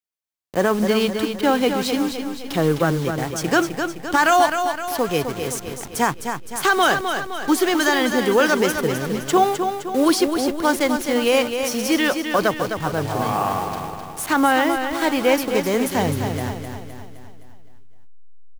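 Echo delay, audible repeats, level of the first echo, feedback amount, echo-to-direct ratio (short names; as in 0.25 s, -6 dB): 0.258 s, 5, -7.0 dB, 51%, -5.5 dB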